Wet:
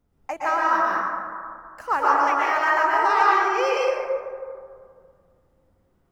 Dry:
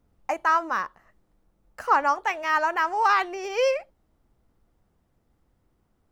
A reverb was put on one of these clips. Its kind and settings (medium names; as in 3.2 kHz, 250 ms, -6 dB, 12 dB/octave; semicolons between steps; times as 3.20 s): plate-style reverb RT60 2.1 s, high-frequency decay 0.35×, pre-delay 105 ms, DRR -6 dB; trim -3.5 dB